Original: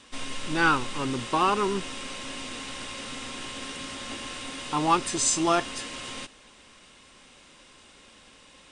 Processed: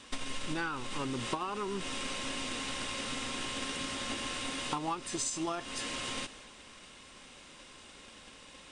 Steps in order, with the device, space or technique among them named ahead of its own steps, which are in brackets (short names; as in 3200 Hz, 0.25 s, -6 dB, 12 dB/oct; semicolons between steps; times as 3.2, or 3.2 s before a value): drum-bus smash (transient shaper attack +7 dB, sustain +3 dB; compressor 20:1, threshold -31 dBFS, peak gain reduction 19 dB; soft clip -18.5 dBFS, distortion -32 dB)